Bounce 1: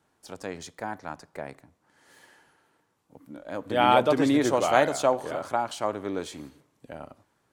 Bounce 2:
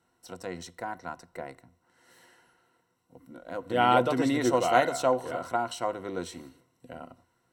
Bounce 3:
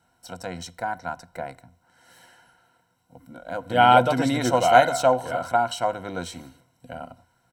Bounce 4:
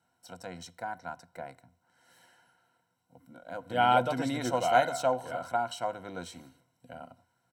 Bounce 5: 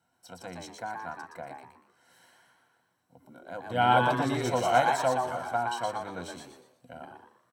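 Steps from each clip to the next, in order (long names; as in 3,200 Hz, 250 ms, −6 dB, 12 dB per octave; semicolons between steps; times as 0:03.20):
EQ curve with evenly spaced ripples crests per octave 2, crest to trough 11 dB; level −3 dB
comb filter 1.3 ms, depth 60%; level +4.5 dB
high-pass filter 88 Hz; level −8.5 dB
on a send: echo with shifted repeats 119 ms, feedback 34%, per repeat +120 Hz, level −4 dB; on the sum: dynamic equaliser 110 Hz, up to +6 dB, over −50 dBFS, Q 1.3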